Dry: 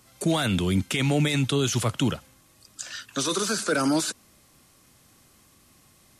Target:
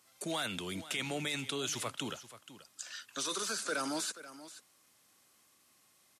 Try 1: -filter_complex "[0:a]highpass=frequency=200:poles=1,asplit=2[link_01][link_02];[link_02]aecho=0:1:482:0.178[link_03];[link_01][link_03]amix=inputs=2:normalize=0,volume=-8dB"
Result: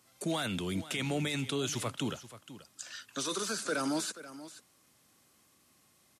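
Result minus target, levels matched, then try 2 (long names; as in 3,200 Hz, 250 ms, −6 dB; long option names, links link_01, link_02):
250 Hz band +4.0 dB
-filter_complex "[0:a]highpass=frequency=640:poles=1,asplit=2[link_01][link_02];[link_02]aecho=0:1:482:0.178[link_03];[link_01][link_03]amix=inputs=2:normalize=0,volume=-8dB"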